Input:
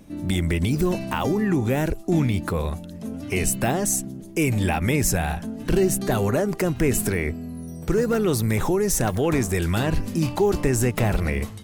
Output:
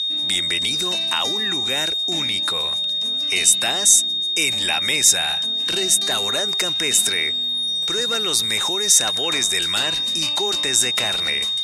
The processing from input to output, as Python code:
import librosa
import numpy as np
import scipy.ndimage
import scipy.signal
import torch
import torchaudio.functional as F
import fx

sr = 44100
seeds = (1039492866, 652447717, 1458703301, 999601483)

y = x + 10.0 ** (-30.0 / 20.0) * np.sin(2.0 * np.pi * 3700.0 * np.arange(len(x)) / sr)
y = fx.weighting(y, sr, curve='ITU-R 468')